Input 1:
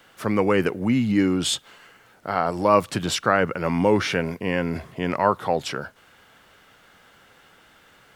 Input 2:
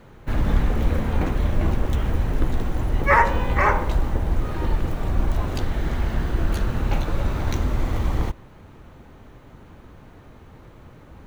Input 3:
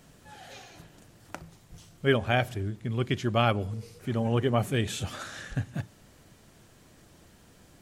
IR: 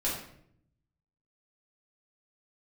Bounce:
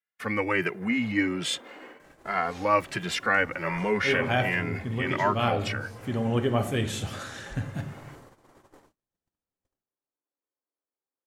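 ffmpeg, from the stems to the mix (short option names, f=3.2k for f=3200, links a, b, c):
-filter_complex "[0:a]equalizer=f=2k:t=o:w=0.94:g=13.5,asplit=2[a][b];[b]adelay=2.5,afreqshift=1.3[c];[a][c]amix=inputs=2:normalize=1,volume=-5.5dB,asplit=2[d][e];[1:a]lowpass=f=2k:w=0.5412,lowpass=f=2k:w=1.3066,acompressor=threshold=-28dB:ratio=6,highpass=f=330:w=0.5412,highpass=f=330:w=1.3066,adelay=550,volume=-13dB,asplit=2[f][g];[g]volume=-4dB[h];[2:a]adelay=2000,volume=-2dB,asplit=2[i][j];[j]volume=-11.5dB[k];[e]apad=whole_len=432724[l];[i][l]sidechaincompress=threshold=-33dB:ratio=8:attack=5.3:release=140[m];[3:a]atrim=start_sample=2205[n];[h][k]amix=inputs=2:normalize=0[o];[o][n]afir=irnorm=-1:irlink=0[p];[d][f][m][p]amix=inputs=4:normalize=0,agate=range=-41dB:threshold=-47dB:ratio=16:detection=peak"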